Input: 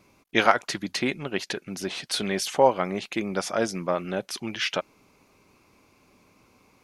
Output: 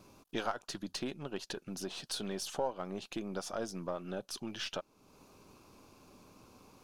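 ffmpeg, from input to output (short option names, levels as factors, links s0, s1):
-af "aeval=exprs='if(lt(val(0),0),0.708*val(0),val(0))':c=same,equalizer=f=2100:t=o:w=0.45:g=-13,acompressor=threshold=0.00355:ratio=2,volume=1.41"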